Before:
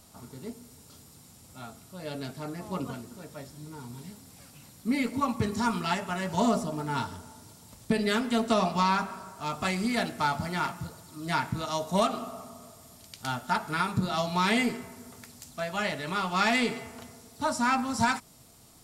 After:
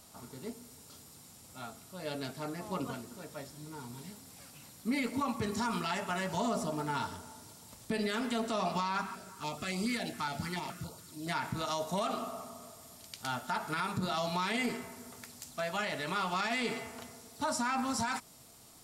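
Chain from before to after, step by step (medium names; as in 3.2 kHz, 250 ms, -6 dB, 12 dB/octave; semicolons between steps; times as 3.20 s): bass shelf 240 Hz -6.5 dB; peak limiter -24 dBFS, peak gain reduction 11 dB; 9.01–11.27 s: step-sequenced notch 7.1 Hz 560–1700 Hz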